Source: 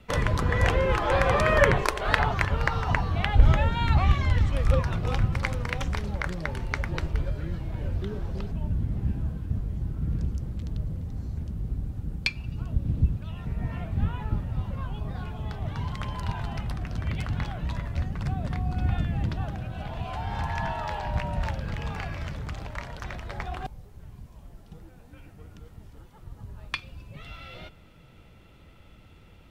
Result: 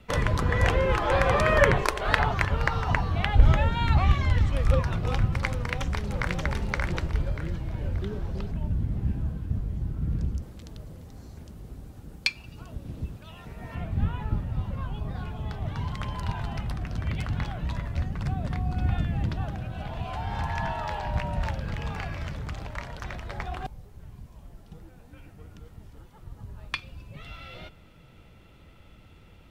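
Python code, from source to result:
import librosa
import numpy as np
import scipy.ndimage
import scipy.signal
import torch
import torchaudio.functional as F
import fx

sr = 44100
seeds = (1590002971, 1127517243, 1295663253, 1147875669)

y = fx.echo_throw(x, sr, start_s=5.52, length_s=0.87, ms=580, feedback_pct=35, wet_db=-2.5)
y = fx.bass_treble(y, sr, bass_db=-12, treble_db=5, at=(10.42, 13.75))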